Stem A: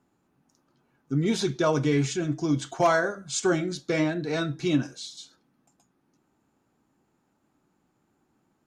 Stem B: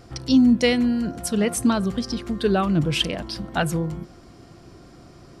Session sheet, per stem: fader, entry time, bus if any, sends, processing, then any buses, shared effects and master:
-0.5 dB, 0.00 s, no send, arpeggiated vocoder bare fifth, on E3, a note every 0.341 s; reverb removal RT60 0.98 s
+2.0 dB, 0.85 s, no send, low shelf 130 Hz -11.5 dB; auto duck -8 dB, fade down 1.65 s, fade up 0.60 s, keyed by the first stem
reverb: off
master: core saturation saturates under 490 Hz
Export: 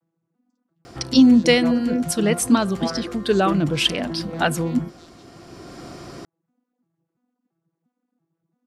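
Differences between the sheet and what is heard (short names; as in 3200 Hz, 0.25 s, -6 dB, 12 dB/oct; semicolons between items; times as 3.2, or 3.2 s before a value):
stem B +2.0 dB -> +11.5 dB; master: missing core saturation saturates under 490 Hz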